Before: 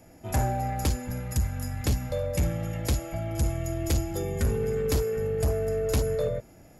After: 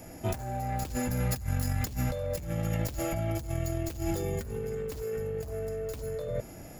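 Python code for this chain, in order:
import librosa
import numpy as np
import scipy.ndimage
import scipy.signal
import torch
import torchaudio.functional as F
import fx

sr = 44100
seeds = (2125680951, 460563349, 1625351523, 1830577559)

y = fx.tracing_dist(x, sr, depth_ms=0.13)
y = fx.high_shelf(y, sr, hz=7100.0, db=5.0)
y = fx.over_compress(y, sr, threshold_db=-34.0, ratio=-1.0)
y = y * librosa.db_to_amplitude(1.0)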